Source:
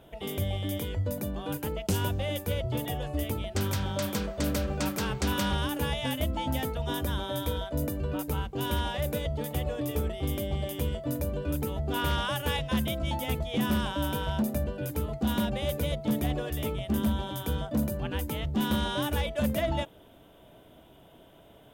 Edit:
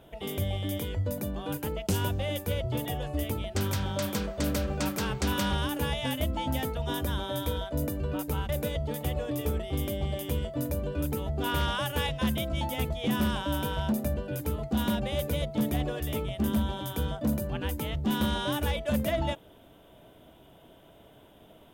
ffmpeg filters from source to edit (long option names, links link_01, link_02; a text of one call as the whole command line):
ffmpeg -i in.wav -filter_complex "[0:a]asplit=2[link_01][link_02];[link_01]atrim=end=8.492[link_03];[link_02]atrim=start=8.988[link_04];[link_03][link_04]acrossfade=duration=0.004:curve1=hsin:curve2=hsin" out.wav